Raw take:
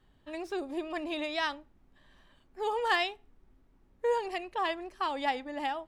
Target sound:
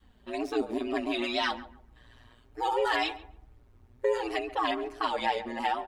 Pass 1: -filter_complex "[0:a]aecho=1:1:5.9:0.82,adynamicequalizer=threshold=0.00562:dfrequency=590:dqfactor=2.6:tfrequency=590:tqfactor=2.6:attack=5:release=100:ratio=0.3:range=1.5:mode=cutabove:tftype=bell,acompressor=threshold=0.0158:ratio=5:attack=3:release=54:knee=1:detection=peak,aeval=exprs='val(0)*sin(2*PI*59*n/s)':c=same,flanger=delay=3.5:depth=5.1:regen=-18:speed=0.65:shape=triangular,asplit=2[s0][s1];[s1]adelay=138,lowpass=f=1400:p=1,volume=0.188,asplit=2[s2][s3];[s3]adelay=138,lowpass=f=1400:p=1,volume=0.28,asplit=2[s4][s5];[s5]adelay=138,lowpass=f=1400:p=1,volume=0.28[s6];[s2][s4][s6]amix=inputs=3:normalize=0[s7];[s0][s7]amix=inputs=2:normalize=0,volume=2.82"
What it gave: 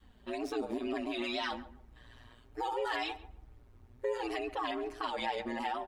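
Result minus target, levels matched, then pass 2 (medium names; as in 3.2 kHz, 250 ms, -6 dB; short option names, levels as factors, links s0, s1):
compression: peak gain reduction +7 dB
-filter_complex "[0:a]aecho=1:1:5.9:0.82,adynamicequalizer=threshold=0.00562:dfrequency=590:dqfactor=2.6:tfrequency=590:tqfactor=2.6:attack=5:release=100:ratio=0.3:range=1.5:mode=cutabove:tftype=bell,acompressor=threshold=0.0447:ratio=5:attack=3:release=54:knee=1:detection=peak,aeval=exprs='val(0)*sin(2*PI*59*n/s)':c=same,flanger=delay=3.5:depth=5.1:regen=-18:speed=0.65:shape=triangular,asplit=2[s0][s1];[s1]adelay=138,lowpass=f=1400:p=1,volume=0.188,asplit=2[s2][s3];[s3]adelay=138,lowpass=f=1400:p=1,volume=0.28,asplit=2[s4][s5];[s5]adelay=138,lowpass=f=1400:p=1,volume=0.28[s6];[s2][s4][s6]amix=inputs=3:normalize=0[s7];[s0][s7]amix=inputs=2:normalize=0,volume=2.82"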